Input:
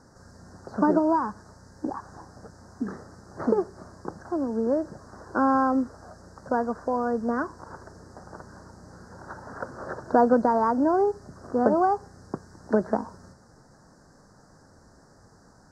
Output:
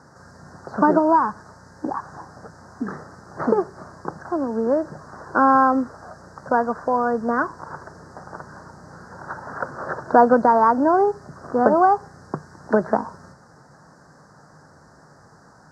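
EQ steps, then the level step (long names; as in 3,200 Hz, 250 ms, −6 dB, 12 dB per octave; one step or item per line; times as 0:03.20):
high-pass filter 64 Hz
parametric band 150 Hz +9 dB 0.26 octaves
parametric band 1,300 Hz +8 dB 2.5 octaves
+1.0 dB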